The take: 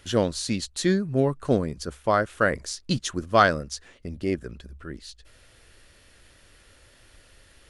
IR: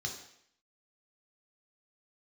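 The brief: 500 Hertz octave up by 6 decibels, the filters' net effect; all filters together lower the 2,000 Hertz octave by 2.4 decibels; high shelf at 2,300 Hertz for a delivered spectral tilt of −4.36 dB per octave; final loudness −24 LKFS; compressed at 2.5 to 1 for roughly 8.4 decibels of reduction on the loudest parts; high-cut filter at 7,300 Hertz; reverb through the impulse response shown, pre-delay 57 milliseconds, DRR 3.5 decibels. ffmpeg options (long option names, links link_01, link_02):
-filter_complex "[0:a]lowpass=7300,equalizer=frequency=500:width_type=o:gain=7.5,equalizer=frequency=2000:width_type=o:gain=-8,highshelf=frequency=2300:gain=7.5,acompressor=threshold=-23dB:ratio=2.5,asplit=2[link_01][link_02];[1:a]atrim=start_sample=2205,adelay=57[link_03];[link_02][link_03]afir=irnorm=-1:irlink=0,volume=-5dB[link_04];[link_01][link_04]amix=inputs=2:normalize=0,volume=2dB"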